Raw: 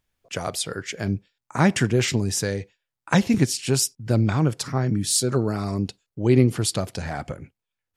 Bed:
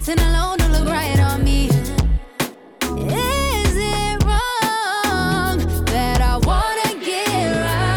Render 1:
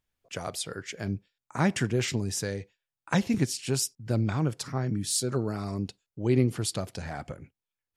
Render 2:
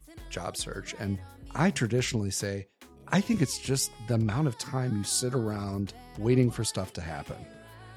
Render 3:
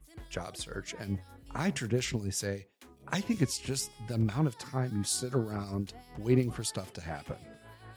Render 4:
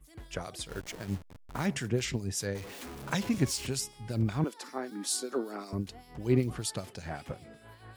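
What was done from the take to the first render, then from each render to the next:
trim -6.5 dB
add bed -30.5 dB
companded quantiser 8-bit; harmonic tremolo 5.2 Hz, depth 70%, crossover 2.5 kHz
0.69–1.66 s: send-on-delta sampling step -41.5 dBFS; 2.55–3.67 s: jump at every zero crossing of -39 dBFS; 4.44–5.73 s: steep high-pass 240 Hz

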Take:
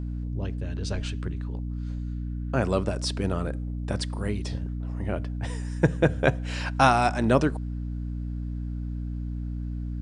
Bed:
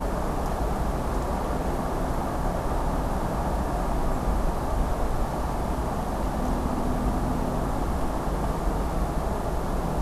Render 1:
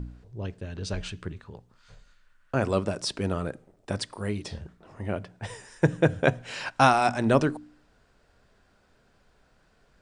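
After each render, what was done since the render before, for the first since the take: de-hum 60 Hz, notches 5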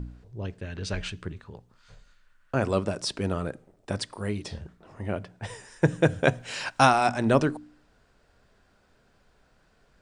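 0.58–1.10 s: peaking EQ 2 kHz +6.5 dB 1.1 oct; 5.87–6.86 s: treble shelf 4.7 kHz +7 dB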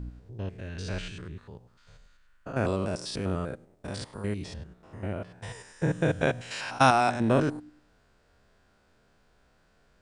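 spectrogram pixelated in time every 100 ms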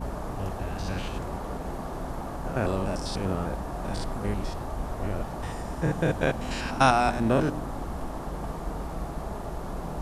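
add bed -7 dB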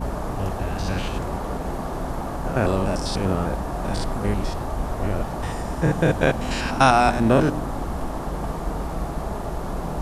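trim +6 dB; peak limiter -2 dBFS, peak gain reduction 2.5 dB

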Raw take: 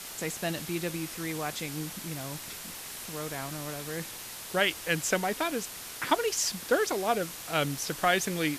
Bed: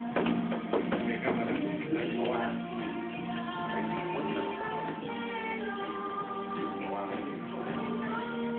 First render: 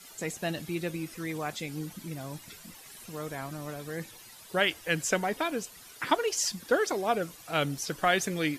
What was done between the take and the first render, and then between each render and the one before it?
noise reduction 13 dB, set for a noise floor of -42 dBFS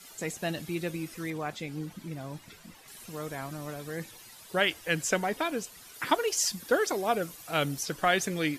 1.30–2.88 s: treble shelf 4.7 kHz -9 dB; 5.94–7.83 s: treble shelf 11 kHz +7.5 dB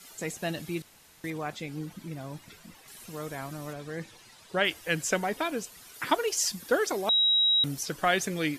0.82–1.24 s: room tone; 3.73–4.65 s: distance through air 52 m; 7.09–7.64 s: bleep 3.84 kHz -20 dBFS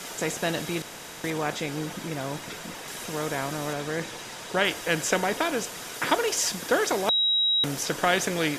spectral levelling over time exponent 0.6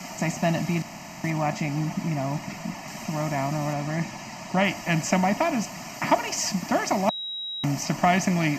static phaser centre 2.4 kHz, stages 8; small resonant body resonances 200/610/1700 Hz, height 13 dB, ringing for 20 ms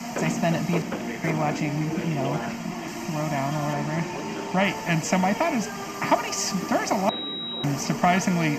add bed 0 dB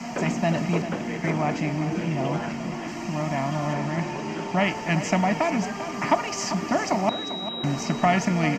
distance through air 59 m; feedback delay 395 ms, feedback 17%, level -11.5 dB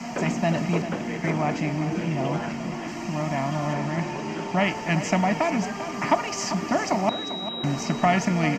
no audible change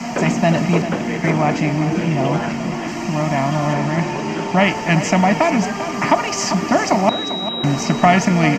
trim +8 dB; peak limiter -2 dBFS, peak gain reduction 2.5 dB

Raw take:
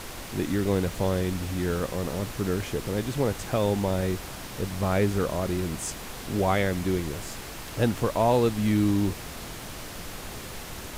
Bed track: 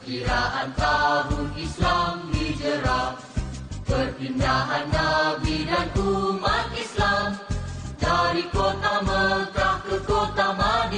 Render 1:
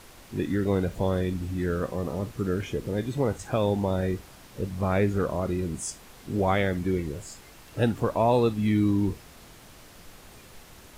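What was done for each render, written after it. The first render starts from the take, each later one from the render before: noise print and reduce 11 dB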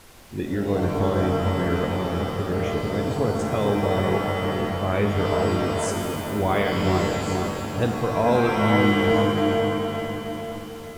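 on a send: bucket-brigade echo 445 ms, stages 4096, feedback 52%, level -4.5 dB; on the sum: pitch-shifted reverb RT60 2.1 s, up +7 st, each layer -2 dB, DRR 4.5 dB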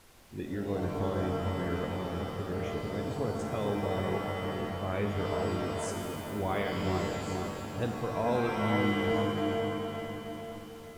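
trim -9.5 dB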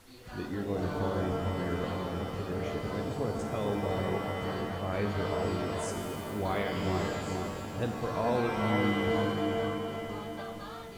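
add bed track -23.5 dB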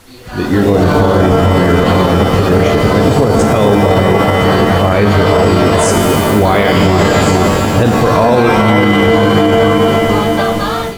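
level rider gain up to 12 dB; loudness maximiser +15 dB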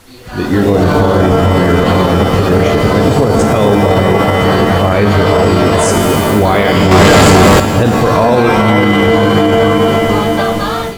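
6.91–7.60 s: waveshaping leveller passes 3

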